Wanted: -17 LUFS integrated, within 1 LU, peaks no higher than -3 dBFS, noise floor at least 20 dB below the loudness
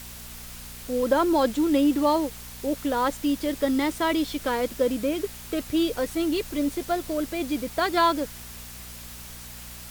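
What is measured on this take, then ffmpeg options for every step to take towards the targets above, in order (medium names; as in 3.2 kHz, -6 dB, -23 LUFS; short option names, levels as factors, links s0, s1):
hum 60 Hz; highest harmonic 240 Hz; hum level -43 dBFS; noise floor -41 dBFS; noise floor target -46 dBFS; loudness -25.5 LUFS; peak level -9.5 dBFS; loudness target -17.0 LUFS
-> -af "bandreject=f=60:t=h:w=4,bandreject=f=120:t=h:w=4,bandreject=f=180:t=h:w=4,bandreject=f=240:t=h:w=4"
-af "afftdn=nr=6:nf=-41"
-af "volume=2.66,alimiter=limit=0.708:level=0:latency=1"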